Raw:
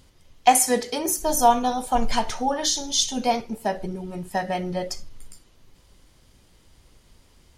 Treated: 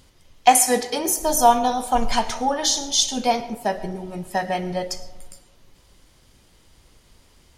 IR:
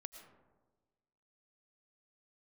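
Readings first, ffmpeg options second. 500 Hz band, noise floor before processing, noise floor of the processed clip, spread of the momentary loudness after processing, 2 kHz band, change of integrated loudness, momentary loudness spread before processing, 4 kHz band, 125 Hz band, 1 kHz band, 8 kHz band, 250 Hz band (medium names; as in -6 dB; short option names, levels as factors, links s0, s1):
+2.0 dB, -57 dBFS, -56 dBFS, 12 LU, +3.0 dB, +2.5 dB, 12 LU, +3.0 dB, +0.5 dB, +2.5 dB, +3.0 dB, +1.0 dB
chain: -filter_complex "[0:a]asplit=2[s0][s1];[1:a]atrim=start_sample=2205,lowshelf=f=280:g=-9[s2];[s1][s2]afir=irnorm=-1:irlink=0,volume=1.41[s3];[s0][s3]amix=inputs=2:normalize=0,volume=0.794"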